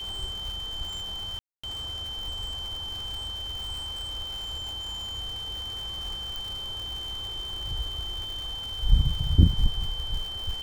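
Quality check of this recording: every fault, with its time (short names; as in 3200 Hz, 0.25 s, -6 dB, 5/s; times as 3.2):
crackle 190/s -34 dBFS
tone 3100 Hz -33 dBFS
1.39–1.64 gap 0.245 s
6.36 pop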